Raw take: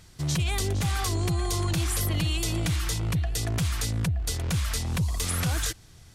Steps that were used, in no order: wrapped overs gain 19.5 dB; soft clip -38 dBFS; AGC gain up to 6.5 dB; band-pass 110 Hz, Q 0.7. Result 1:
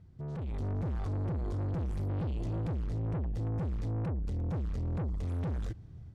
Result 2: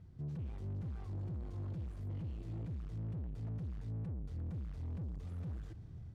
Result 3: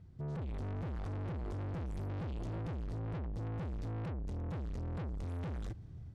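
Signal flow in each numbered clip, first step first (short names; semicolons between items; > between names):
wrapped overs > band-pass > soft clip > AGC; wrapped overs > AGC > soft clip > band-pass; band-pass > wrapped overs > AGC > soft clip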